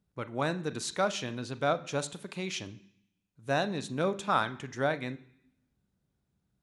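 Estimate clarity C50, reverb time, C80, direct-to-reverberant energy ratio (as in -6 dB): 17.0 dB, 0.65 s, 20.5 dB, 12.0 dB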